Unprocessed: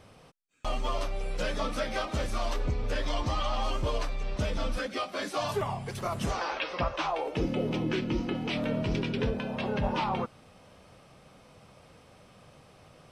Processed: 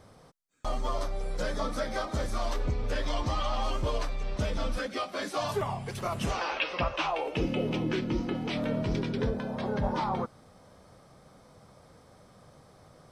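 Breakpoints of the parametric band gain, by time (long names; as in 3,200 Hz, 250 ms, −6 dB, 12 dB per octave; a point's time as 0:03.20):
parametric band 2,700 Hz 0.43 octaves
0:02.14 −12.5 dB
0:02.62 −3 dB
0:05.54 −3 dB
0:06.41 +5.5 dB
0:07.60 +5.5 dB
0:08.03 −5 dB
0:08.73 −5 dB
0:09.42 −14.5 dB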